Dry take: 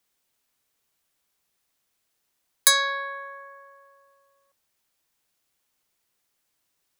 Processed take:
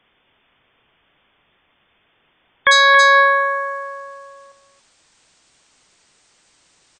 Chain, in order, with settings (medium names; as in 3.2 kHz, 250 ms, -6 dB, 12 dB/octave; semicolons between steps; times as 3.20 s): brick-wall FIR low-pass 3.6 kHz, from 2.71 s 9 kHz; delay 276 ms -9 dB; loudness maximiser +21.5 dB; trim -1 dB